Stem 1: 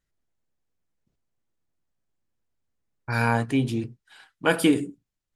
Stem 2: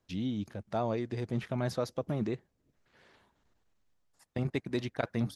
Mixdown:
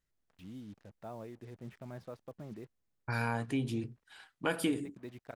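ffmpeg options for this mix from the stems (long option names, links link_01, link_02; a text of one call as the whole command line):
ffmpeg -i stem1.wav -i stem2.wav -filter_complex "[0:a]volume=-4dB[link_01];[1:a]lowpass=2700,acompressor=mode=upward:threshold=-41dB:ratio=2.5,acrusher=bits=7:mix=0:aa=0.5,adelay=300,volume=-13.5dB[link_02];[link_01][link_02]amix=inputs=2:normalize=0,acompressor=threshold=-34dB:ratio=2" out.wav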